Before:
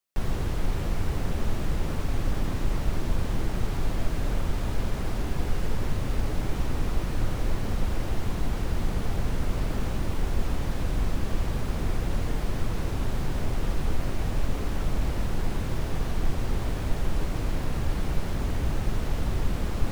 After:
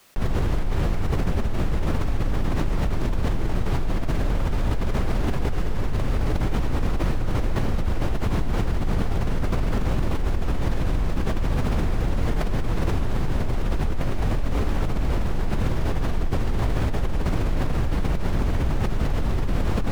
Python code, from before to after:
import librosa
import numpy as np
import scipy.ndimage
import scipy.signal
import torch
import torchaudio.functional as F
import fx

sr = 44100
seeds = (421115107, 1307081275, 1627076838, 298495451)

p1 = fx.high_shelf(x, sr, hz=4500.0, db=-8.0)
p2 = p1 + fx.echo_single(p1, sr, ms=359, db=-12.0, dry=0)
p3 = fx.env_flatten(p2, sr, amount_pct=100)
y = p3 * 10.0 ** (-5.0 / 20.0)